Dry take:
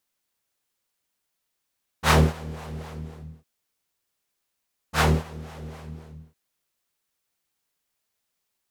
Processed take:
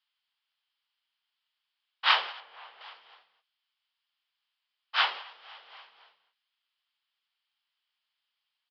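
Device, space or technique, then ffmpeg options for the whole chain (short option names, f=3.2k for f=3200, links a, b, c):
musical greeting card: -filter_complex "[0:a]asettb=1/sr,asplit=3[a][b][c];[a]atrim=end=2.404[d];[b]atrim=start=2.4:end=2.81,asetpts=PTS-STARTPTS,afade=t=in:d=0.004:c=qsin,afade=t=out:st=0.406:d=0.004:c=qsin,aemphasis=mode=reproduction:type=75kf[e];[c]atrim=start=2.806[f];[d][e]acrossfade=d=0.004:c1=hsin:c2=qsin[g];[g][f]acrossfade=d=0.004:c1=qsin:c2=hsin,aresample=11025,aresample=44100,highpass=f=880:w=0.5412,highpass=f=880:w=1.3066,equalizer=f=3.1k:t=o:w=0.35:g=10,volume=-2dB"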